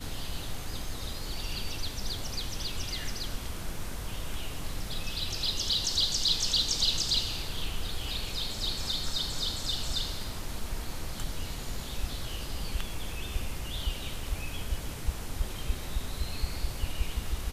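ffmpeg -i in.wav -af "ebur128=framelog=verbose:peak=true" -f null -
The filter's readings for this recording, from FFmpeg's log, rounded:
Integrated loudness:
  I:         -32.7 LUFS
  Threshold: -42.7 LUFS
Loudness range:
  LRA:         9.4 LU
  Threshold: -52.3 LUFS
  LRA low:   -37.0 LUFS
  LRA high:  -27.6 LUFS
True peak:
  Peak:      -13.8 dBFS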